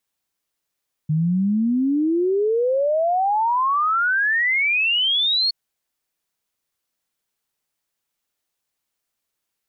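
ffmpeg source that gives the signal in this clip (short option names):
-f lavfi -i "aevalsrc='0.15*clip(min(t,4.42-t)/0.01,0,1)*sin(2*PI*150*4.42/log(4400/150)*(exp(log(4400/150)*t/4.42)-1))':d=4.42:s=44100"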